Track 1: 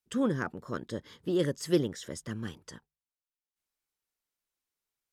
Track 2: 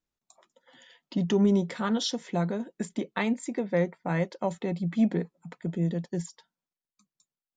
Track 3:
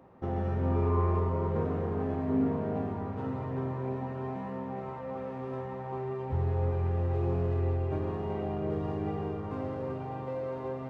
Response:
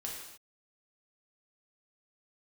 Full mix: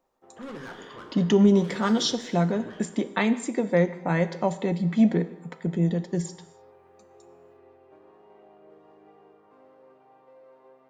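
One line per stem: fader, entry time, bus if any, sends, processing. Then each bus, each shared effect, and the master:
-16.5 dB, 0.25 s, send -4.5 dB, low-pass opened by the level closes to 510 Hz, open at -26.5 dBFS; overdrive pedal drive 30 dB, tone 4300 Hz, clips at -14.5 dBFS; auto duck -15 dB, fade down 1.35 s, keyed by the second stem
+2.5 dB, 0.00 s, send -8.5 dB, dry
-16.0 dB, 0.00 s, no send, HPF 400 Hz 12 dB/oct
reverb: on, pre-delay 3 ms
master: dry

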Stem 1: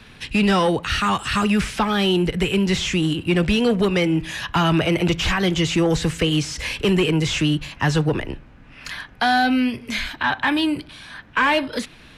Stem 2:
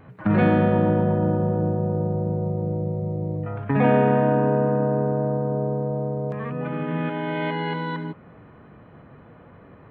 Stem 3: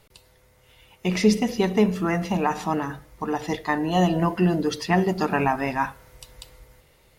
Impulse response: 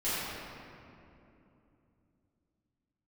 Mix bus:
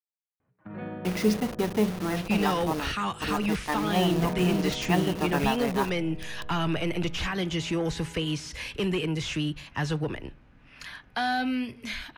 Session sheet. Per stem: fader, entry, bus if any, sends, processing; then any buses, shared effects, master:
-9.5 dB, 1.95 s, no send, dry
-17.5 dB, 0.40 s, no send, notches 50/100/150/200 Hz; upward expander 1.5:1, over -34 dBFS
-5.0 dB, 0.00 s, no send, level-crossing sampler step -25.5 dBFS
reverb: off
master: notch 7600 Hz, Q 12

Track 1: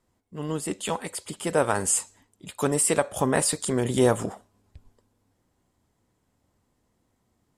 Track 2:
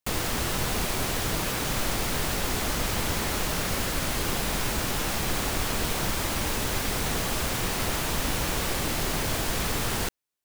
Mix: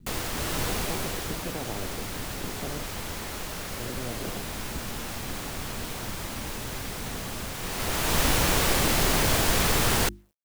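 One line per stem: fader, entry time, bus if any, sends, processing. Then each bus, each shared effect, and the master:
-3.0 dB, 0.00 s, muted 2.84–3.8, no send, inverse Chebyshev low-pass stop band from 1500 Hz, stop band 80 dB; limiter -25 dBFS, peak gain reduction 7.5 dB; spectral compressor 10:1
-2.0 dB, 0.00 s, no send, notches 50/100/150/200/250/300/350 Hz; auto duck -12 dB, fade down 1.50 s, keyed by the first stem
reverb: off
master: requantised 12-bit, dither none; AGC gain up to 7 dB

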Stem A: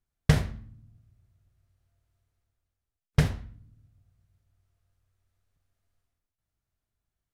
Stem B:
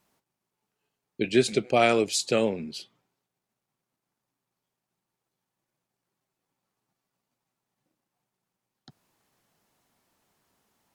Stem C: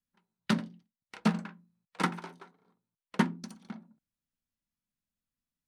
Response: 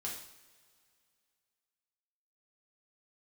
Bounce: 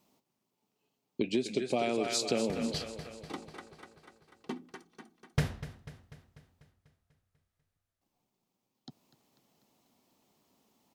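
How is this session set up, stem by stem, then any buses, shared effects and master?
-4.5 dB, 2.20 s, no bus, no send, echo send -14.5 dB, wow and flutter 71 cents; auto duck -17 dB, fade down 1.10 s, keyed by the second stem
+2.0 dB, 0.00 s, muted 6.7–8.01, bus A, no send, echo send -18.5 dB, dry
-11.5 dB, 1.30 s, bus A, no send, echo send -8.5 dB, comb 2.6 ms, depth 79%
bus A: 0.0 dB, fifteen-band EQ 250 Hz +6 dB, 1600 Hz -12 dB, 10000 Hz -6 dB; compressor 6:1, threshold -27 dBFS, peak gain reduction 15.5 dB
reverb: off
echo: feedback echo 0.246 s, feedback 58%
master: low shelf 82 Hz -9.5 dB

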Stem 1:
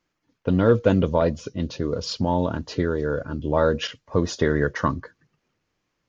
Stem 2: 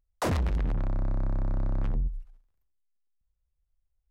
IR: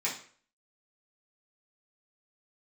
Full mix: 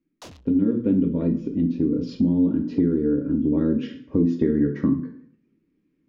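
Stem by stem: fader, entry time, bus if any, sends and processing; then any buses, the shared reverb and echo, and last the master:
0.0 dB, 0.00 s, send -4.5 dB, EQ curve 110 Hz 0 dB, 300 Hz +12 dB, 710 Hz -20 dB, 2300 Hz -13 dB, 8300 Hz -27 dB; vocal rider 2 s
-18.0 dB, 0.00 s, no send, band shelf 4300 Hz +11.5 dB; sample leveller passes 1; auto duck -15 dB, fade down 0.20 s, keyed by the first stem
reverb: on, RT60 0.50 s, pre-delay 3 ms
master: compressor 2:1, threshold -23 dBFS, peak gain reduction 9 dB

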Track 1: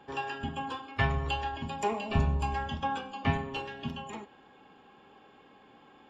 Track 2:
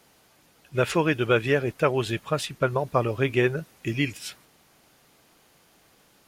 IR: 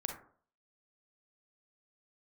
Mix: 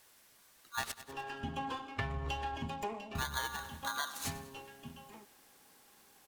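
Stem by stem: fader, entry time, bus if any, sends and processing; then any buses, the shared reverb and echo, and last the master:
-1.5 dB, 1.00 s, no send, no echo send, running maximum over 3 samples; auto duck -11 dB, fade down 0.50 s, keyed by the second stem
-8.5 dB, 0.00 s, muted 0.92–3.15, no send, echo send -17.5 dB, high shelf 5100 Hz +10.5 dB; polarity switched at an audio rate 1300 Hz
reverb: off
echo: feedback echo 98 ms, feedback 51%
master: compressor 12:1, threshold -33 dBFS, peak gain reduction 10.5 dB

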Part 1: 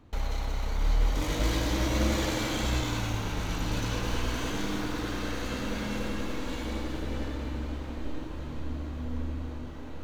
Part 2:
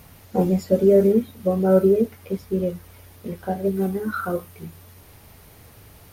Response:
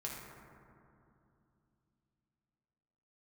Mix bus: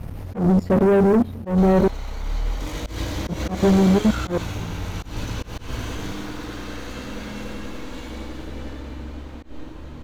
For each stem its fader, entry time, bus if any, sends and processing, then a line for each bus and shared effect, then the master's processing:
0.0 dB, 1.45 s, no send, dry
+1.5 dB, 0.00 s, muted 1.88–2.82, no send, tilt -3.5 dB/oct; level quantiser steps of 22 dB; sample leveller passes 3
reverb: off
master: auto swell 0.147 s

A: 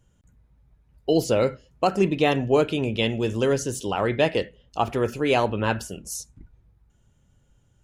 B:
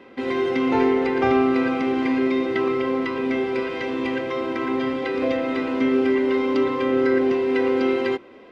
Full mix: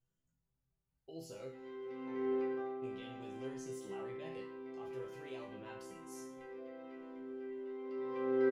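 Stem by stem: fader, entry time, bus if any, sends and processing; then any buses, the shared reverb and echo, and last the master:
-5.0 dB, 0.00 s, muted 1.79–2.82, no send, limiter -17.5 dBFS, peak gain reduction 9.5 dB
+1.0 dB, 1.35 s, no send, compressor 3:1, threshold -22 dBFS, peak gain reduction 6.5 dB; auto duck -16 dB, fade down 0.50 s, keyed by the first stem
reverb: off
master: resonator bank C3 major, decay 0.49 s

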